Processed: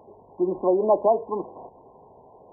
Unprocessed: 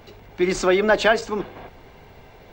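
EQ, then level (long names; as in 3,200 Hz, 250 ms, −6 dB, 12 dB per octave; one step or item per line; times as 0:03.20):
resonant band-pass 800 Hz, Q 0.54
linear-phase brick-wall low-pass 1,100 Hz
0.0 dB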